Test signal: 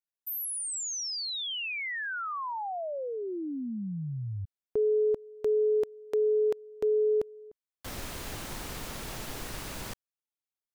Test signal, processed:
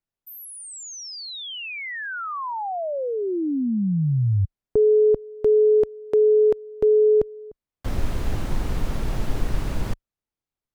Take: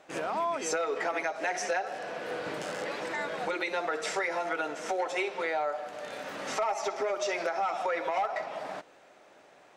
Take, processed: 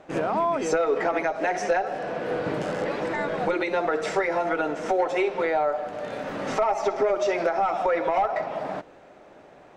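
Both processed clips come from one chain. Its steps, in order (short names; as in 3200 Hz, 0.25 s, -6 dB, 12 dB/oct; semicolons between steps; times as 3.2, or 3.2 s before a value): tilt -3 dB/oct; gain +5.5 dB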